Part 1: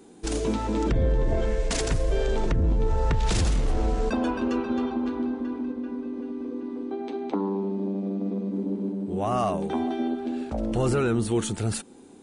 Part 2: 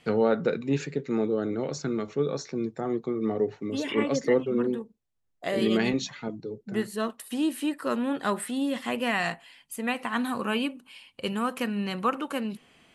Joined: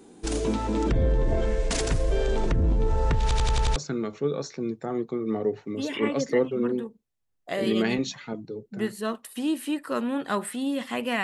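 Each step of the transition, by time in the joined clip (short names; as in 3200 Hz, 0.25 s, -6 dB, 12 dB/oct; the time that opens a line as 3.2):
part 1
3.22 stutter in place 0.09 s, 6 plays
3.76 switch to part 2 from 1.71 s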